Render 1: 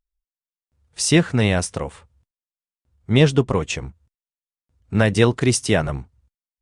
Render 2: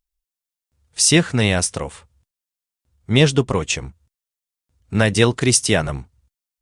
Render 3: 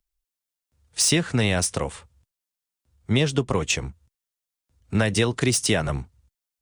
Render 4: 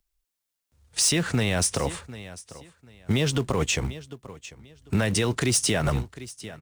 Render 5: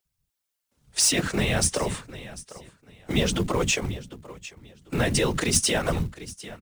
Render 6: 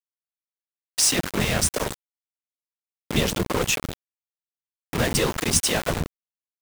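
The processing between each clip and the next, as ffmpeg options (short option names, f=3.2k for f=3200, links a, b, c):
-af "highshelf=f=2.8k:g=8"
-filter_complex "[0:a]acrossover=split=140|540|3700[a][b][c][d];[d]asoftclip=type=tanh:threshold=-14dB[e];[a][b][c][e]amix=inputs=4:normalize=0,acompressor=threshold=-17dB:ratio=6"
-filter_complex "[0:a]aecho=1:1:745|1490:0.0794|0.0191,asplit=2[a][b];[b]acrusher=bits=2:mode=log:mix=0:aa=0.000001,volume=-11dB[c];[a][c]amix=inputs=2:normalize=0,alimiter=limit=-16dB:level=0:latency=1:release=47,volume=1.5dB"
-filter_complex "[0:a]acrossover=split=180[a][b];[a]adelay=50[c];[c][b]amix=inputs=2:normalize=0,afftfilt=real='hypot(re,im)*cos(2*PI*random(0))':imag='hypot(re,im)*sin(2*PI*random(1))':win_size=512:overlap=0.75,acrusher=bits=7:mode=log:mix=0:aa=0.000001,volume=7dB"
-af "aeval=exprs='val(0)*gte(abs(val(0)),0.0708)':c=same,volume=1.5dB"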